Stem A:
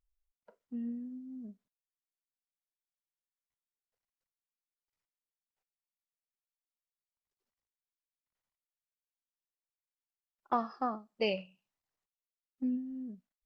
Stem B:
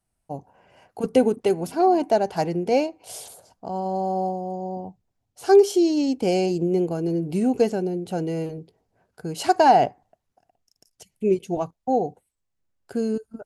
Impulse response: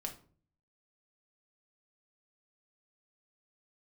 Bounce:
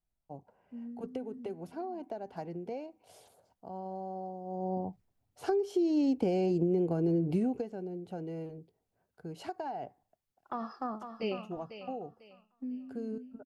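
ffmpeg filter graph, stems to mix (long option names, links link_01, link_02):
-filter_complex "[0:a]alimiter=level_in=4dB:limit=-24dB:level=0:latency=1:release=35,volume=-4dB,dynaudnorm=framelen=210:gausssize=21:maxgain=7.5dB,volume=-5.5dB,asplit=2[link_01][link_02];[link_02]volume=-9.5dB[link_03];[1:a]equalizer=frequency=9100:width_type=o:width=2.3:gain=-13,acompressor=threshold=-23dB:ratio=10,volume=-1dB,afade=type=in:start_time=4.44:duration=0.3:silence=0.266073,afade=type=out:start_time=7.3:duration=0.38:silence=0.298538[link_04];[link_03]aecho=0:1:497|994|1491|1988:1|0.29|0.0841|0.0244[link_05];[link_01][link_04][link_05]amix=inputs=3:normalize=0,acrossover=split=380[link_06][link_07];[link_07]acompressor=threshold=-34dB:ratio=3[link_08];[link_06][link_08]amix=inputs=2:normalize=0"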